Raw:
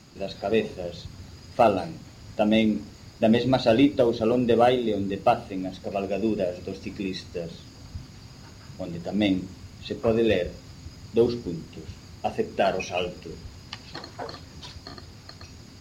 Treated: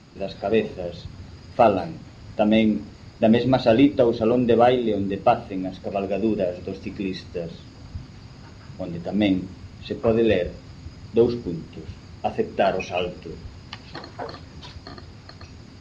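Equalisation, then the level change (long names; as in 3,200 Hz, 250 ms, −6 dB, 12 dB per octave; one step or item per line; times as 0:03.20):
high-frequency loss of the air 67 metres
high-shelf EQ 6,000 Hz −6 dB
+3.0 dB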